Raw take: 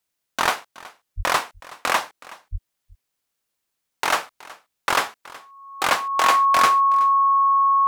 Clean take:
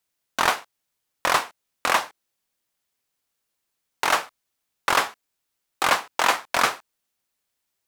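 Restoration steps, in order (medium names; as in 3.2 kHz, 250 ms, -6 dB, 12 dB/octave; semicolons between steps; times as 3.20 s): band-stop 1.1 kHz, Q 30; 1.16–1.28 s: high-pass 140 Hz 24 dB/octave; 2.51–2.63 s: high-pass 140 Hz 24 dB/octave; inverse comb 372 ms -20.5 dB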